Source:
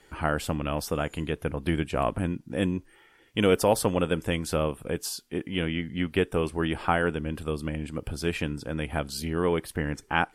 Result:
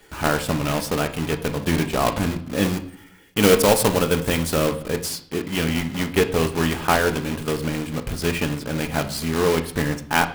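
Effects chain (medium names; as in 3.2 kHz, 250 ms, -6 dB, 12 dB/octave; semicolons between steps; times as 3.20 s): block-companded coder 3-bit; 2.63–4.66 s: treble shelf 5.4 kHz -> 10 kHz +5 dB; reverberation RT60 0.60 s, pre-delay 5 ms, DRR 6.5 dB; trim +4.5 dB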